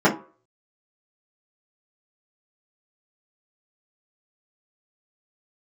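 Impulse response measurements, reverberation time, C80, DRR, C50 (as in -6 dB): 0.40 s, 17.5 dB, -8.5 dB, 12.0 dB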